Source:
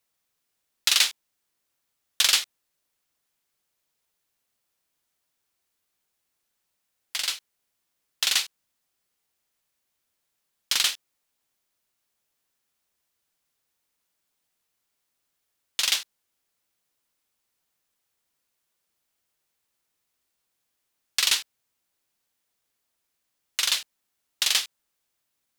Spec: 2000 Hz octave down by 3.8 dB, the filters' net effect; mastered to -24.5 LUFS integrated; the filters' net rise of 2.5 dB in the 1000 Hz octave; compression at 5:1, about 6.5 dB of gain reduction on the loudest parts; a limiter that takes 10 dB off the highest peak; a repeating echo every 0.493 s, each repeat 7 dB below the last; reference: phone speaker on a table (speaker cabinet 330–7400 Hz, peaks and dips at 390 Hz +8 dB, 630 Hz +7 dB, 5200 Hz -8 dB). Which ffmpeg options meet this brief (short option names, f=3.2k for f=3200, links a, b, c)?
-af "equalizer=f=1k:t=o:g=4.5,equalizer=f=2k:t=o:g=-6,acompressor=threshold=-24dB:ratio=5,alimiter=limit=-19dB:level=0:latency=1,highpass=f=330:w=0.5412,highpass=f=330:w=1.3066,equalizer=f=390:t=q:w=4:g=8,equalizer=f=630:t=q:w=4:g=7,equalizer=f=5.2k:t=q:w=4:g=-8,lowpass=f=7.4k:w=0.5412,lowpass=f=7.4k:w=1.3066,aecho=1:1:493|986|1479|1972|2465:0.447|0.201|0.0905|0.0407|0.0183,volume=15dB"